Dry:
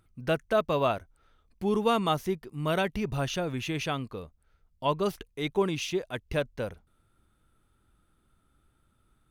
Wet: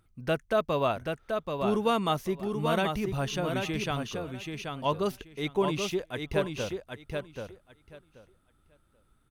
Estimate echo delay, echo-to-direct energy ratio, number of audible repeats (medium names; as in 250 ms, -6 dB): 782 ms, -5.0 dB, 2